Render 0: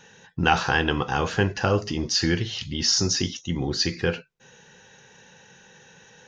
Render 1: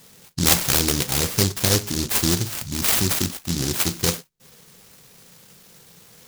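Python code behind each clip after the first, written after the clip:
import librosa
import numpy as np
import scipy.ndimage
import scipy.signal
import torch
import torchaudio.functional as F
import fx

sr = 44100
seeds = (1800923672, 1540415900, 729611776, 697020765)

y = fx.noise_mod_delay(x, sr, seeds[0], noise_hz=5200.0, depth_ms=0.37)
y = y * librosa.db_to_amplitude(2.5)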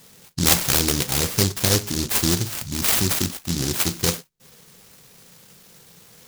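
y = x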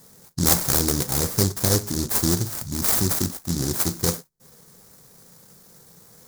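y = fx.peak_eq(x, sr, hz=2800.0, db=-13.0, octaves=1.0)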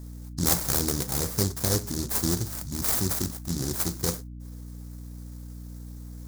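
y = fx.add_hum(x, sr, base_hz=60, snr_db=10)
y = y * librosa.db_to_amplitude(-5.0)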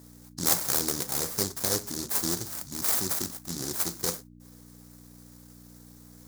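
y = fx.highpass(x, sr, hz=400.0, slope=6)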